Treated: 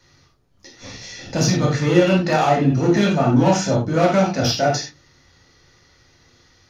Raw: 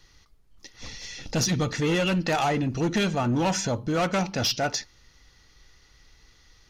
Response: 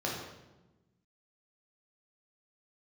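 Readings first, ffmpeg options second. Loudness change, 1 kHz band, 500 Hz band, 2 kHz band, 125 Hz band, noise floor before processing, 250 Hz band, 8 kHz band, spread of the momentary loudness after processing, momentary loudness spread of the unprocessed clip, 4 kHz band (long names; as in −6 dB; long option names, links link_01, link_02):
+7.5 dB, +7.5 dB, +9.5 dB, +4.5 dB, +8.5 dB, −59 dBFS, +8.5 dB, +3.0 dB, 17 LU, 13 LU, +3.0 dB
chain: -filter_complex "[0:a]bandreject=frequency=74.44:width_type=h:width=4,bandreject=frequency=148.88:width_type=h:width=4,bandreject=frequency=223.32:width_type=h:width=4,bandreject=frequency=297.76:width_type=h:width=4[link_01];[1:a]atrim=start_sample=2205,afade=type=out:start_time=0.15:duration=0.01,atrim=end_sample=7056[link_02];[link_01][link_02]afir=irnorm=-1:irlink=0"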